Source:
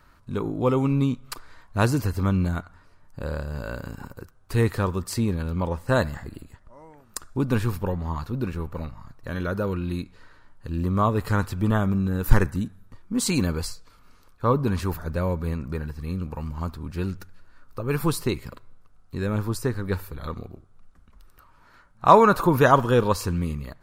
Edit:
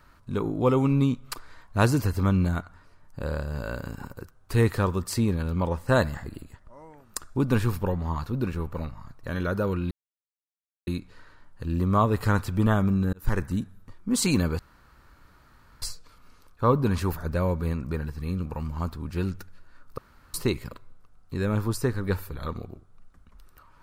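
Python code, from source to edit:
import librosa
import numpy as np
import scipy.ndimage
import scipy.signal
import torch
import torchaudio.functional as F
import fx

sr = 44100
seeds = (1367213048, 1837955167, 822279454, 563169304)

y = fx.edit(x, sr, fx.insert_silence(at_s=9.91, length_s=0.96),
    fx.fade_in_span(start_s=12.17, length_s=0.46),
    fx.insert_room_tone(at_s=13.63, length_s=1.23),
    fx.room_tone_fill(start_s=17.79, length_s=0.36), tone=tone)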